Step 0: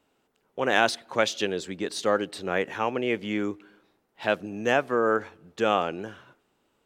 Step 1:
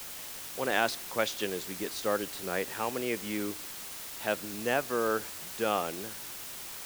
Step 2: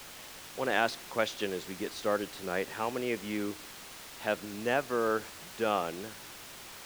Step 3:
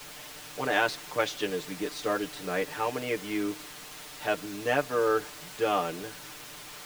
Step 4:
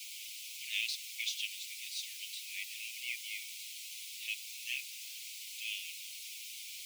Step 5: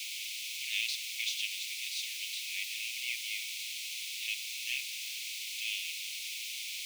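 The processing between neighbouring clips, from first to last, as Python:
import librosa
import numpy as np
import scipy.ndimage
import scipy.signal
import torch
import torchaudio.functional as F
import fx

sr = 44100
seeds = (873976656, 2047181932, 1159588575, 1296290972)

y1 = fx.quant_dither(x, sr, seeds[0], bits=6, dither='triangular')
y1 = y1 * 10.0 ** (-6.0 / 20.0)
y2 = fx.high_shelf(y1, sr, hz=6900.0, db=-11.0)
y3 = y2 + 0.96 * np.pad(y2, (int(6.7 * sr / 1000.0), 0))[:len(y2)]
y4 = scipy.signal.sosfilt(scipy.signal.butter(16, 2200.0, 'highpass', fs=sr, output='sos'), y3)
y5 = fx.bin_compress(y4, sr, power=0.6)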